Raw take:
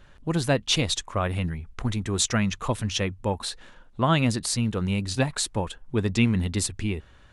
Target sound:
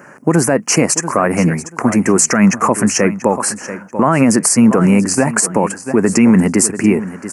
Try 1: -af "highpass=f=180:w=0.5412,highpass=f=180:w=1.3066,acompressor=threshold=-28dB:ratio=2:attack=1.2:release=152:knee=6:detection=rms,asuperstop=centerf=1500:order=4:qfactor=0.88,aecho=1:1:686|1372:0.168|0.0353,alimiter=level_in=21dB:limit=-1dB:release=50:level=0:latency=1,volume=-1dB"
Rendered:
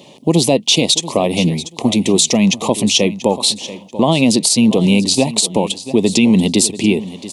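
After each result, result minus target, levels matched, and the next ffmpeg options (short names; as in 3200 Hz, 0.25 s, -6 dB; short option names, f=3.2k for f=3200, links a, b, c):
4000 Hz band +12.5 dB; compressor: peak gain reduction +5 dB
-af "highpass=f=180:w=0.5412,highpass=f=180:w=1.3066,acompressor=threshold=-28dB:ratio=2:attack=1.2:release=152:knee=6:detection=rms,asuperstop=centerf=3600:order=4:qfactor=0.88,aecho=1:1:686|1372:0.168|0.0353,alimiter=level_in=21dB:limit=-1dB:release=50:level=0:latency=1,volume=-1dB"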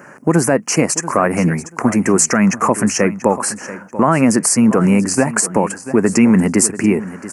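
compressor: peak gain reduction +5 dB
-af "highpass=f=180:w=0.5412,highpass=f=180:w=1.3066,acompressor=threshold=-18.5dB:ratio=2:attack=1.2:release=152:knee=6:detection=rms,asuperstop=centerf=3600:order=4:qfactor=0.88,aecho=1:1:686|1372:0.168|0.0353,alimiter=level_in=21dB:limit=-1dB:release=50:level=0:latency=1,volume=-1dB"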